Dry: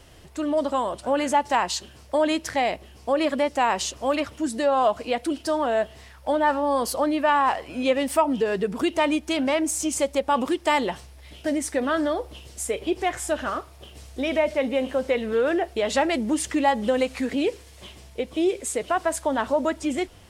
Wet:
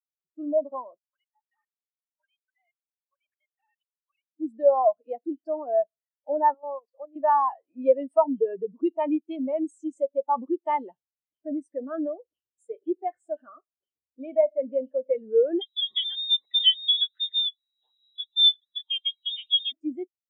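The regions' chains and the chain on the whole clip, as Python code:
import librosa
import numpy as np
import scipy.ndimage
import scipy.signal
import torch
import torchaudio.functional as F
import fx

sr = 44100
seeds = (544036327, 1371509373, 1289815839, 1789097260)

y = fx.chain(x, sr, fx.sine_speech(),
    fx.highpass(hz=1300.0, slope=24),
    fx.level_steps(step_db=20), at=(0.98, 4.34))
y = fx.chain(y, sr, fx.bandpass_edges(low_hz=370.0, high_hz=4700.0),
    fx.level_steps(step_db=12), at=(6.54, 7.16))
y = fx.chain(y, sr, fx.freq_invert(carrier_hz=3900),
    fx.band_squash(depth_pct=40), at=(15.61, 19.72))
y = scipy.signal.sosfilt(scipy.signal.butter(2, 150.0, 'highpass', fs=sr, output='sos'), y)
y = fx.spectral_expand(y, sr, expansion=2.5)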